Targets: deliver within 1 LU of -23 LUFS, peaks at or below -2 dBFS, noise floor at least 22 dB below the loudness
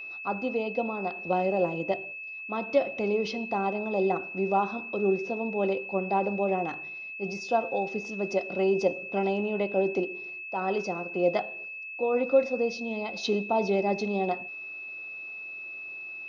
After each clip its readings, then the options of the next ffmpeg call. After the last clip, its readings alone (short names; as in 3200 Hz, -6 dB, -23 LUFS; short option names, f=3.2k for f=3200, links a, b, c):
steady tone 2600 Hz; tone level -37 dBFS; loudness -29.0 LUFS; peak -11.0 dBFS; loudness target -23.0 LUFS
-> -af "bandreject=f=2.6k:w=30"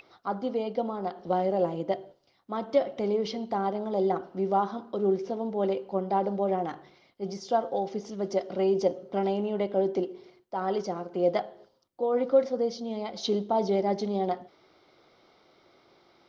steady tone none; loudness -29.5 LUFS; peak -11.5 dBFS; loudness target -23.0 LUFS
-> -af "volume=6.5dB"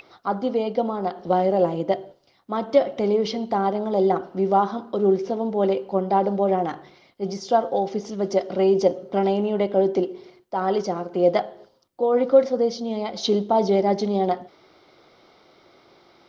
loudness -23.0 LUFS; peak -5.0 dBFS; noise floor -60 dBFS